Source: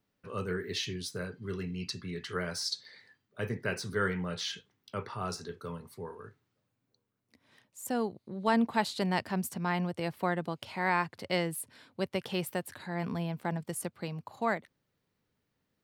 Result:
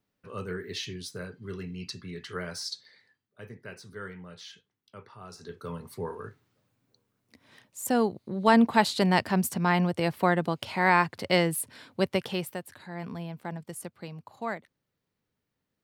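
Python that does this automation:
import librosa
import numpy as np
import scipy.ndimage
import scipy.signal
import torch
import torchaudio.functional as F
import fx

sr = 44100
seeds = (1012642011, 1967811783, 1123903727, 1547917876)

y = fx.gain(x, sr, db=fx.line((2.61, -1.0), (3.42, -10.0), (5.31, -10.0), (5.48, -0.5), (5.98, 7.0), (12.11, 7.0), (12.61, -3.0)))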